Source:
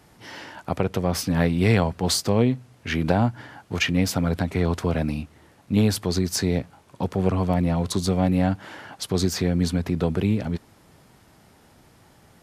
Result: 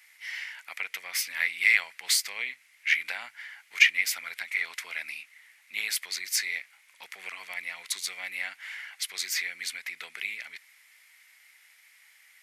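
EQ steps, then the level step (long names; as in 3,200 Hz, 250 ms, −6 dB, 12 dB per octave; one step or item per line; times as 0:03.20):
high-pass with resonance 2,100 Hz, resonance Q 7
high-shelf EQ 8,000 Hz +10.5 dB
−5.5 dB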